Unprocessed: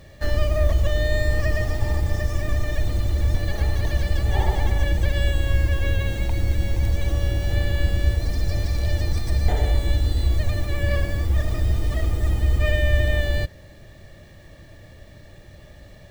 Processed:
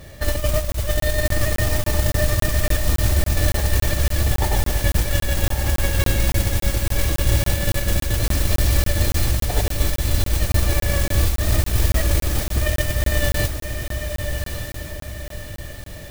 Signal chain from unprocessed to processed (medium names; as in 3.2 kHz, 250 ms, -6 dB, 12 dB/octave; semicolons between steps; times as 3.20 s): compressor with a negative ratio -21 dBFS, ratio -0.5; modulation noise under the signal 12 dB; on a send: echo that smears into a reverb 1173 ms, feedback 43%, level -6 dB; on the sum: crackling interface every 0.28 s, samples 1024, zero, from 0.72 s; trim +3 dB